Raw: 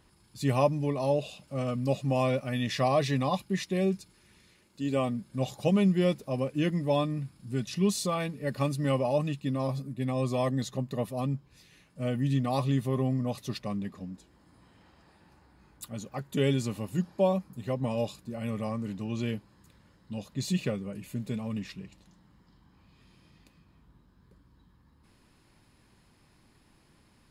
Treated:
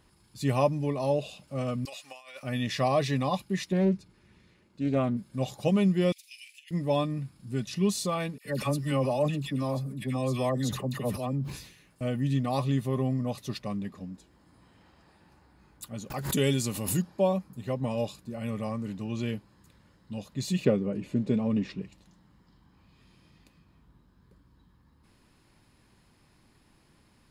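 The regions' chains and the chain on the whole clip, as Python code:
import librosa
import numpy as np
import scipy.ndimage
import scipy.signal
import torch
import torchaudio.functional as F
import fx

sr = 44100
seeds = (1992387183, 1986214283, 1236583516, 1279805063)

y = fx.chain(x, sr, fx.highpass(hz=1500.0, slope=12),
    fx.over_compress(threshold_db=-44.0, ratio=-0.5), at=(1.85, 2.43))
y = fx.chain(y, sr, fx.lowpass(hz=2400.0, slope=6),
    fx.peak_eq(hz=130.0, db=4.0, octaves=2.7),
    fx.doppler_dist(depth_ms=0.25), at=(3.72, 5.17))
y = fx.chain(y, sr, fx.steep_highpass(hz=2200.0, slope=48),
    fx.over_compress(threshold_db=-48.0, ratio=-0.5),
    fx.doubler(ms=48.0, db=-13.0), at=(6.12, 6.71))
y = fx.chain(y, sr, fx.high_shelf(hz=8900.0, db=6.0),
    fx.dispersion(late='lows', ms=73.0, hz=1400.0),
    fx.sustainer(db_per_s=83.0), at=(8.38, 12.01))
y = fx.chain(y, sr, fx.high_shelf(hz=4700.0, db=11.5),
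    fx.pre_swell(db_per_s=66.0), at=(16.1, 17.02))
y = fx.chain(y, sr, fx.lowpass(hz=5800.0, slope=12),
    fx.peak_eq(hz=350.0, db=10.5, octaves=2.2), at=(20.65, 21.82))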